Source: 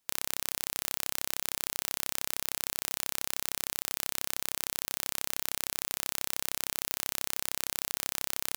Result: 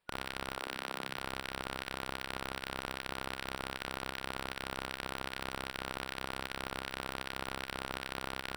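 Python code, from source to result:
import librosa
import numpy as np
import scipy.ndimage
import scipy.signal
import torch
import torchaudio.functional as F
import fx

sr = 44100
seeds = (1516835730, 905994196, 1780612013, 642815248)

y = fx.band_shuffle(x, sr, order='4123')
y = fx.highpass(y, sr, hz=fx.line((0.54, 340.0), (1.18, 120.0)), slope=24, at=(0.54, 1.18), fade=0.02)
y = 10.0 ** (-17.5 / 20.0) * np.tanh(y / 10.0 ** (-17.5 / 20.0))
y = np.convolve(y, np.full(7, 1.0 / 7))[:len(y)]
y = fx.doubler(y, sr, ms=45.0, db=-7.0)
y = y * librosa.db_to_amplitude(4.0)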